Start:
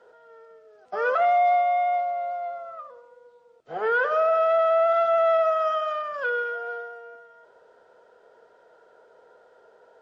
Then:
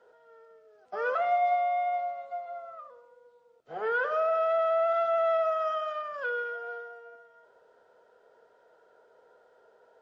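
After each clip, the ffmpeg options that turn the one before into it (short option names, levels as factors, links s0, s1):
-af "bandreject=f=175.1:t=h:w=4,bandreject=f=350.2:t=h:w=4,bandreject=f=525.3:t=h:w=4,bandreject=f=700.4:t=h:w=4,bandreject=f=875.5:t=h:w=4,bandreject=f=1050.6:t=h:w=4,bandreject=f=1225.7:t=h:w=4,bandreject=f=1400.8:t=h:w=4,bandreject=f=1575.9:t=h:w=4,bandreject=f=1751:t=h:w=4,bandreject=f=1926.1:t=h:w=4,bandreject=f=2101.2:t=h:w=4,bandreject=f=2276.3:t=h:w=4,bandreject=f=2451.4:t=h:w=4,bandreject=f=2626.5:t=h:w=4,bandreject=f=2801.6:t=h:w=4,bandreject=f=2976.7:t=h:w=4,bandreject=f=3151.8:t=h:w=4,bandreject=f=3326.9:t=h:w=4,bandreject=f=3502:t=h:w=4,bandreject=f=3677.1:t=h:w=4,bandreject=f=3852.2:t=h:w=4,bandreject=f=4027.3:t=h:w=4,bandreject=f=4202.4:t=h:w=4,bandreject=f=4377.5:t=h:w=4,bandreject=f=4552.6:t=h:w=4,bandreject=f=4727.7:t=h:w=4,bandreject=f=4902.8:t=h:w=4,bandreject=f=5077.9:t=h:w=4,bandreject=f=5253:t=h:w=4,bandreject=f=5428.1:t=h:w=4,bandreject=f=5603.2:t=h:w=4,bandreject=f=5778.3:t=h:w=4,bandreject=f=5953.4:t=h:w=4,bandreject=f=6128.5:t=h:w=4,volume=0.531"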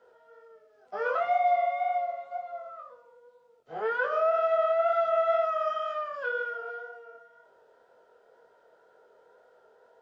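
-af "flanger=delay=19.5:depth=5.4:speed=2,volume=1.5"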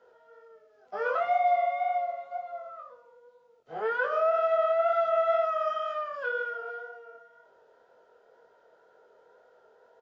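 -af "aresample=16000,aresample=44100"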